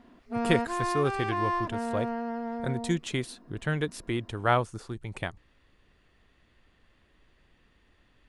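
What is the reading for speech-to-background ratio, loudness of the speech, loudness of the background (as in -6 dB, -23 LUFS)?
0.5 dB, -31.5 LUFS, -32.0 LUFS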